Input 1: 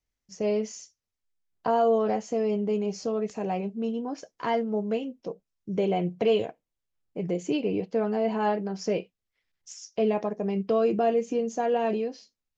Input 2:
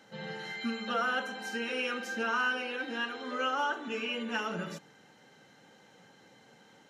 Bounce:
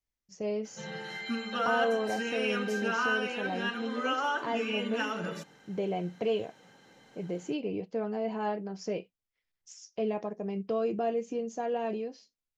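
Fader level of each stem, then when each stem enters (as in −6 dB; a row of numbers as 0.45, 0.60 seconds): −6.5, +0.5 decibels; 0.00, 0.65 seconds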